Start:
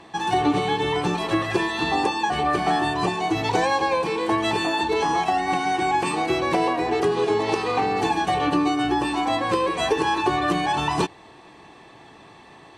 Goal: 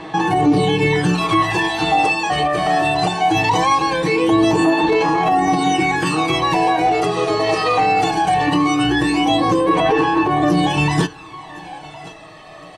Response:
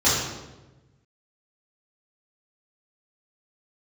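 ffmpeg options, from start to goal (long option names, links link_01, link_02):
-filter_complex "[0:a]asplit=2[link_01][link_02];[1:a]atrim=start_sample=2205,atrim=end_sample=3528[link_03];[link_02][link_03]afir=irnorm=-1:irlink=0,volume=-39dB[link_04];[link_01][link_04]amix=inputs=2:normalize=0,asettb=1/sr,asplit=3[link_05][link_06][link_07];[link_05]atrim=end=9.794[link_08];[link_06]atrim=start=9.79:end=10.43,asetpts=PTS-STARTPTS,afade=type=in:duration=0.004:curve=qsin,afade=type=out:start_time=0.636:duration=0.004:curve=qsin,acrossover=split=510|3800[link_09][link_10][link_11];[link_09]acompressor=threshold=-28dB:ratio=4[link_12];[link_10]acompressor=threshold=-26dB:ratio=4[link_13];[link_11]acompressor=threshold=-50dB:ratio=4[link_14];[link_12][link_13][link_14]amix=inputs=3:normalize=0[link_15];[link_07]atrim=start=10.426[link_16];[link_08][link_15]acrossfade=duration=0.004:curve1=hsin:curve2=qsin[link_17];[link_17][link_16]acrossfade=duration=0.004:curve1=qsin:curve2=hsin,aecho=1:1:1064|2128|3192:0.1|0.045|0.0202,aphaser=in_gain=1:out_gain=1:delay=1.6:decay=0.6:speed=0.2:type=sinusoidal,alimiter=limit=-14dB:level=0:latency=1:release=19,aecho=1:1:6.4:0.63,volume=4.5dB"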